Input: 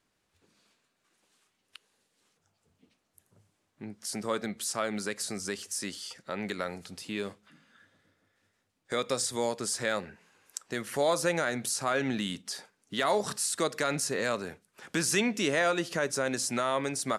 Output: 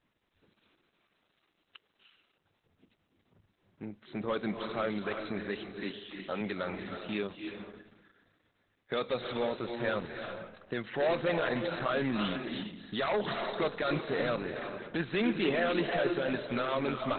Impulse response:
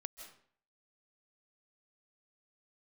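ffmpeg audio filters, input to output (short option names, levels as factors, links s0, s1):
-filter_complex "[0:a]asettb=1/sr,asplit=3[s0][s1][s2];[s0]atrim=end=5.834[s3];[s1]atrim=start=5.83:end=6.41,asetpts=PTS-STARTPTS,afade=t=in:d=0.004:c=qsin,afade=t=out:st=0.576:d=0.004:c=qsin,highpass=140[s4];[s2]atrim=start=6.406[s5];[s3][s4]acrossfade=d=0.004:c1=hsin:c2=qsin[s6];[s6][s5]acrossfade=d=0.004:c1=qsin:c2=hsin,aeval=exprs='0.188*sin(PI/2*2.24*val(0)/0.188)':c=same[s7];[1:a]atrim=start_sample=2205,asetrate=23814,aresample=44100[s8];[s7][s8]afir=irnorm=-1:irlink=0,volume=0.398" -ar 48000 -c:a libopus -b:a 8k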